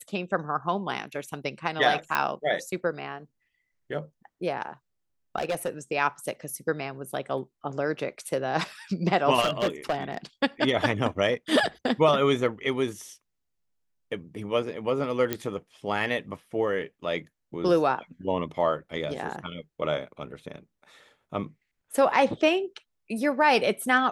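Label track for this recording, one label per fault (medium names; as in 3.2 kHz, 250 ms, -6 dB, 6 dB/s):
2.150000	2.150000	pop -11 dBFS
5.380000	5.690000	clipped -23 dBFS
9.400000	10.170000	clipped -20.5 dBFS
15.330000	15.330000	pop -11 dBFS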